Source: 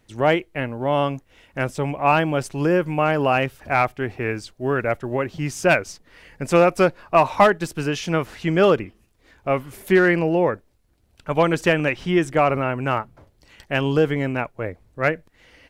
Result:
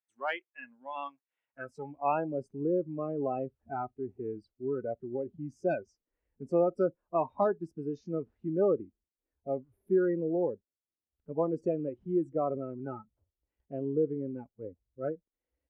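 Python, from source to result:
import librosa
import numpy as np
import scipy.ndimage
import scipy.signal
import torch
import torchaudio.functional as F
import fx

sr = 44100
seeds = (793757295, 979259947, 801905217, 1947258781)

y = fx.filter_sweep_bandpass(x, sr, from_hz=1600.0, to_hz=390.0, start_s=1.25, end_s=2.44, q=0.9)
y = fx.noise_reduce_blind(y, sr, reduce_db=24)
y = y * librosa.db_to_amplitude(-9.0)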